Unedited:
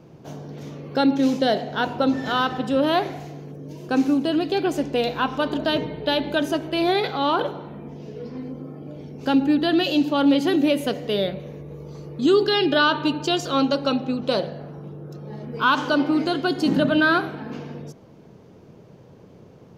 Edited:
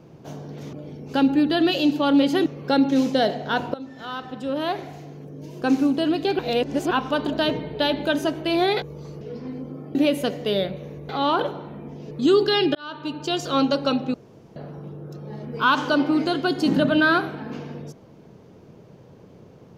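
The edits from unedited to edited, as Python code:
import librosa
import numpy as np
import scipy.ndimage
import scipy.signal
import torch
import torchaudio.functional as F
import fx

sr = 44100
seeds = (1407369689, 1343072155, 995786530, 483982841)

y = fx.edit(x, sr, fx.fade_in_from(start_s=2.01, length_s=1.9, floor_db=-18.5),
    fx.reverse_span(start_s=4.66, length_s=0.52),
    fx.swap(start_s=7.09, length_s=1.02, other_s=11.72, other_length_s=0.39),
    fx.move(start_s=8.85, length_s=1.73, to_s=0.73),
    fx.fade_in_span(start_s=12.75, length_s=0.79),
    fx.room_tone_fill(start_s=14.14, length_s=0.42), tone=tone)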